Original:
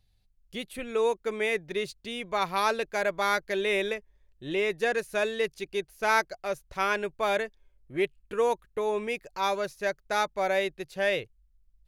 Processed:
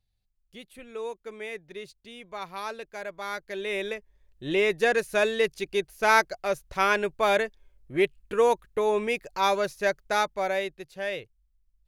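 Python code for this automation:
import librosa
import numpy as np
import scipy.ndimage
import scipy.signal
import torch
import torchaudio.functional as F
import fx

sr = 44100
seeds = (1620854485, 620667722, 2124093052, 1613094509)

y = fx.gain(x, sr, db=fx.line((3.19, -9.0), (4.49, 4.0), (9.98, 4.0), (10.94, -5.0)))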